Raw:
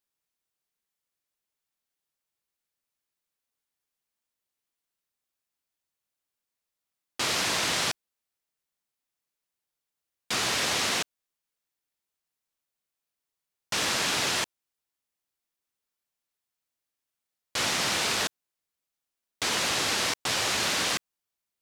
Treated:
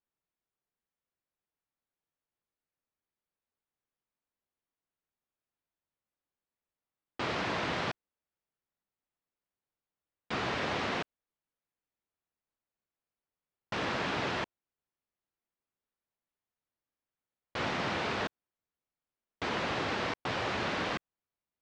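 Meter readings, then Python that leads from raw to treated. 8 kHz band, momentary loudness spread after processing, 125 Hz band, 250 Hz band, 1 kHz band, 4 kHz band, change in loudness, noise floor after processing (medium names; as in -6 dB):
-23.0 dB, 7 LU, +1.0 dB, +0.5 dB, -2.5 dB, -12.0 dB, -7.5 dB, under -85 dBFS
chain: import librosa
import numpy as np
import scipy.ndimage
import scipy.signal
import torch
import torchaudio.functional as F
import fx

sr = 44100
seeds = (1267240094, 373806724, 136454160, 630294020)

y = fx.spacing_loss(x, sr, db_at_10k=37)
y = y * librosa.db_to_amplitude(1.5)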